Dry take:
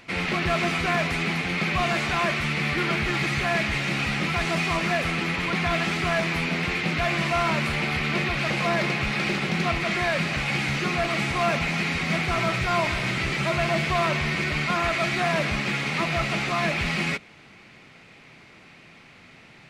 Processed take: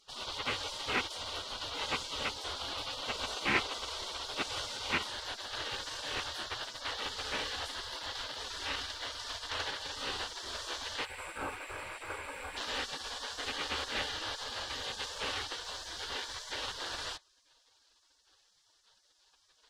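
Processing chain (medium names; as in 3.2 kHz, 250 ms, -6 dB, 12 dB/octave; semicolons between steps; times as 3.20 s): rattle on loud lows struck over -39 dBFS, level -22 dBFS; 11.05–12.57 s: time-frequency box 1.7–7.2 kHz -18 dB; peaking EQ 1.7 kHz +13.5 dB 0.22 oct, from 5.07 s -2 dB; spectral gate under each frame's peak -20 dB weak; treble shelf 8 kHz -11.5 dB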